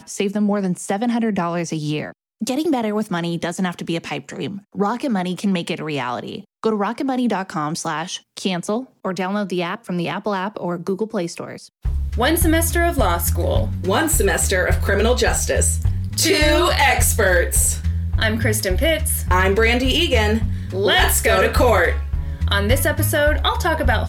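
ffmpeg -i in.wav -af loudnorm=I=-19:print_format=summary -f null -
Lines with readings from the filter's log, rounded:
Input Integrated:    -19.2 LUFS
Input True Peak:      -4.6 dBTP
Input LRA:             7.0 LU
Input Threshold:     -29.2 LUFS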